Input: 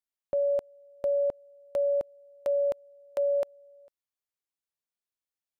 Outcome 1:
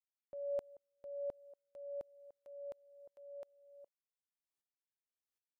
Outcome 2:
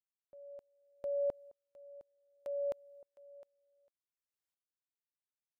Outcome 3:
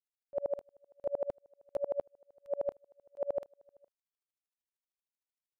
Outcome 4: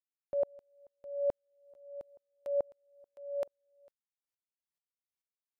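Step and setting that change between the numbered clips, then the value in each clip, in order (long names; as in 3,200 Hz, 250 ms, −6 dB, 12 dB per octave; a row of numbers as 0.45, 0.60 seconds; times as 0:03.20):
tremolo with a ramp in dB, speed: 1.3, 0.66, 13, 2.3 Hertz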